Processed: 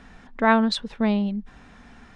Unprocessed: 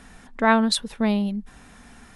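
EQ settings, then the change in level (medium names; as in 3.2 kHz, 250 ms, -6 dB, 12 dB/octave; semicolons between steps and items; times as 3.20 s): Gaussian low-pass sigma 1.5 samples; 0.0 dB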